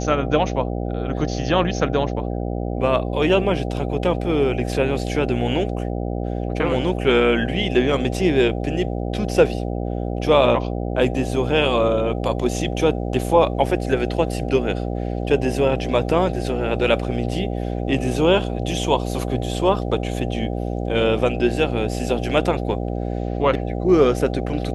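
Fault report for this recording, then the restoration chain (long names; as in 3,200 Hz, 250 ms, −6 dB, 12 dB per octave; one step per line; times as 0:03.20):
mains buzz 60 Hz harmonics 13 −25 dBFS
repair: hum removal 60 Hz, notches 13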